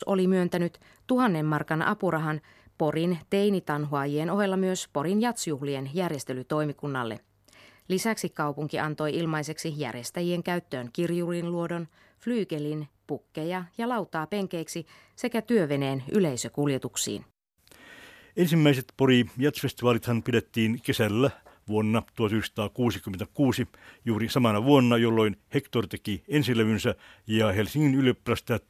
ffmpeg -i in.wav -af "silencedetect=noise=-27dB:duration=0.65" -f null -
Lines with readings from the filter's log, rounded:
silence_start: 7.14
silence_end: 7.90 | silence_duration: 0.76
silence_start: 17.17
silence_end: 18.38 | silence_duration: 1.21